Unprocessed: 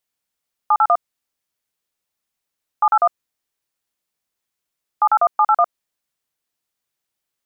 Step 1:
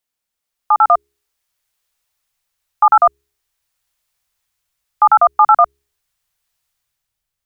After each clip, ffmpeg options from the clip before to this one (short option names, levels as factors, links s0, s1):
-filter_complex "[0:a]bandreject=f=69.06:t=h:w=4,bandreject=f=138.12:t=h:w=4,bandreject=f=207.18:t=h:w=4,bandreject=f=276.24:t=h:w=4,bandreject=f=345.3:t=h:w=4,bandreject=f=414.36:t=h:w=4,asubboost=boost=9.5:cutoff=93,acrossover=split=570[s0][s1];[s1]dynaudnorm=f=110:g=13:m=2.99[s2];[s0][s2]amix=inputs=2:normalize=0"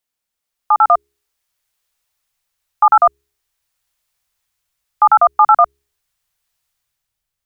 -af anull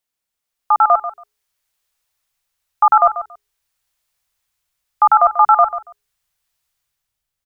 -af "aecho=1:1:140|280:0.237|0.0379,volume=0.891"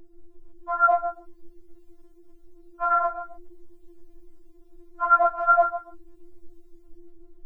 -af "aeval=exprs='val(0)+0.0224*(sin(2*PI*50*n/s)+sin(2*PI*2*50*n/s)/2+sin(2*PI*3*50*n/s)/3+sin(2*PI*4*50*n/s)/4+sin(2*PI*5*50*n/s)/5)':c=same,afftfilt=real='hypot(re,im)*cos(2*PI*random(0))':imag='hypot(re,im)*sin(2*PI*random(1))':win_size=512:overlap=0.75,afftfilt=real='re*4*eq(mod(b,16),0)':imag='im*4*eq(mod(b,16),0)':win_size=2048:overlap=0.75,volume=1.33"